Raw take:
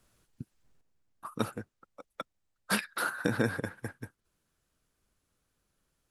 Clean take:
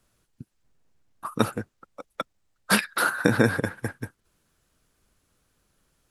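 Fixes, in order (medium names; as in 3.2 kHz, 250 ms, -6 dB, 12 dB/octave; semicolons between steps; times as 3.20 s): clip repair -15 dBFS; gain correction +8.5 dB, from 0.81 s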